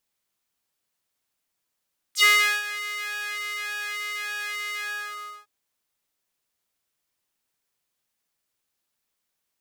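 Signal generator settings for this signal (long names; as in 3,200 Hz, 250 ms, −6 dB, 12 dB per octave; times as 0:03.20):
subtractive patch with pulse-width modulation G#4, oscillator 2 sine, interval +7 semitones, oscillator 2 level −15 dB, sub −24 dB, noise −26.5 dB, filter highpass, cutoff 1,100 Hz, Q 3.5, filter envelope 3 octaves, filter decay 0.08 s, filter sustain 25%, attack 72 ms, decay 0.40 s, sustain −16 dB, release 0.66 s, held 2.65 s, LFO 1.7 Hz, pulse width 46%, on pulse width 6%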